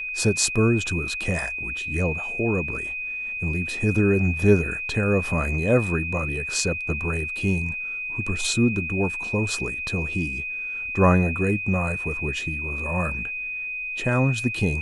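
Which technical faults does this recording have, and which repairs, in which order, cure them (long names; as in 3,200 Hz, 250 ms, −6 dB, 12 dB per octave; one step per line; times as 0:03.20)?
whistle 2,500 Hz −28 dBFS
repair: notch filter 2,500 Hz, Q 30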